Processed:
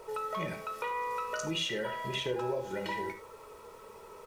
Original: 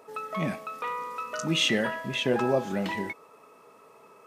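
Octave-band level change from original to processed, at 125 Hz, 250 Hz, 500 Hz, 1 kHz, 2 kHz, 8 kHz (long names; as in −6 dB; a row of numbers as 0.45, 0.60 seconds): −8.5, −10.5, −5.5, −2.5, −7.0, −6.0 decibels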